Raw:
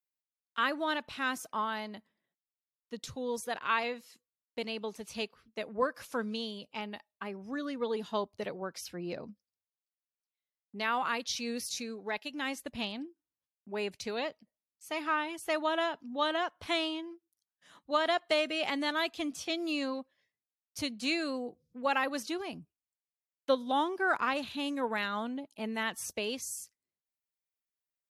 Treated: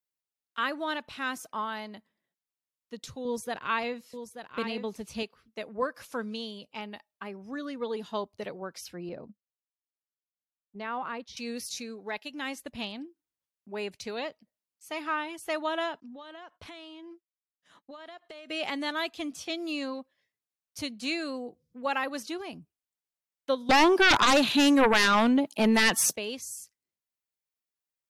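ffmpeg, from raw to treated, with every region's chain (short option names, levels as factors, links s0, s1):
-filter_complex "[0:a]asettb=1/sr,asplit=3[s0][s1][s2];[s0]atrim=end=3.254[s3];[s1]atrim=start=3.25:end=5.23,asetpts=PTS-STARTPTS,afade=t=in:d=0.004:c=qsin,afade=t=out:st=1.976:d=0.004:c=qsin,lowshelf=f=280:g=9.5,aecho=1:1:883:0.355,atrim=end_sample=87318[s4];[s2]atrim=start=5.226[s5];[s3][s4]acrossfade=d=0.004:c1=hsin:c2=qsin[s6];[s6][s5]acrossfade=d=0.004:c1=qsin:c2=hsin,asettb=1/sr,asplit=3[s7][s8][s9];[s7]atrim=end=9.094[s10];[s8]atrim=start=9.09:end=11.37,asetpts=PTS-STARTPTS,afade=t=in:d=0.004:c=qsin,afade=t=out:st=2.276:d=0.004:c=qsin,agate=range=0.282:threshold=0.00447:ratio=16:release=100:detection=peak,lowpass=f=1000:p=1[s11];[s9]atrim=start=11.366[s12];[s10][s11]acrossfade=d=0.004:c1=hsin:c2=qsin[s13];[s13][s12]acrossfade=d=0.004:c1=qsin:c2=hsin,asettb=1/sr,asplit=3[s14][s15][s16];[s14]atrim=end=16.004[s17];[s15]atrim=start=16:end=18.5,asetpts=PTS-STARTPTS,afade=t=in:d=0.004:c=qsin,afade=t=out:st=2.496:d=0.004:c=qsin,agate=range=0.0224:threshold=0.00126:ratio=3:release=100:detection=peak,highshelf=f=11000:g=-9,acompressor=threshold=0.00794:ratio=16:attack=3.2:release=140:knee=1:detection=peak[s18];[s16]atrim=start=18.496[s19];[s17][s18]acrossfade=d=0.004:c1=hsin:c2=qsin[s20];[s20][s19]acrossfade=d=0.004:c1=qsin:c2=hsin,asettb=1/sr,asplit=3[s21][s22][s23];[s21]atrim=end=23.694[s24];[s22]atrim=start=23.69:end=26.16,asetpts=PTS-STARTPTS,afade=t=in:d=0.004:c=qsin,afade=t=out:st=2.466:d=0.004:c=qsin,highpass=f=140:w=0.5412,highpass=f=140:w=1.3066,aeval=exprs='0.158*sin(PI/2*3.98*val(0)/0.158)':c=same[s25];[s23]atrim=start=26.156[s26];[s24][s25]acrossfade=d=0.004:c1=hsin:c2=qsin[s27];[s27][s26]acrossfade=d=0.004:c1=qsin:c2=hsin"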